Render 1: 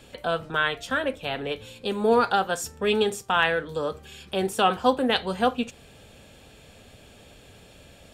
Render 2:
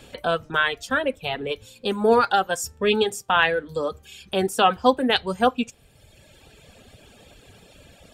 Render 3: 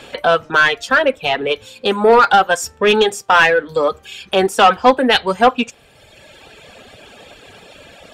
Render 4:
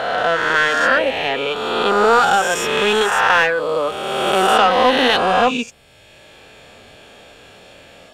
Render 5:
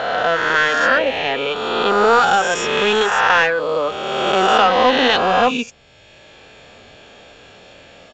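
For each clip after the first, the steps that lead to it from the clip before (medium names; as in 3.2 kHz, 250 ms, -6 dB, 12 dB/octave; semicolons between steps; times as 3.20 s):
reverb removal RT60 1.4 s; trim +3.5 dB
overdrive pedal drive 16 dB, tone 2.5 kHz, clips at -4.5 dBFS; trim +4 dB
reverse spectral sustain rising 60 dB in 2.10 s; trim -6.5 dB
resampled via 16 kHz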